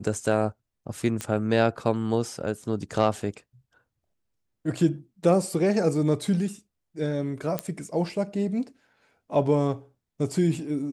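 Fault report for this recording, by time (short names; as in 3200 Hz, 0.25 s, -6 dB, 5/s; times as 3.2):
1.21 pop -15 dBFS
7.59 pop -11 dBFS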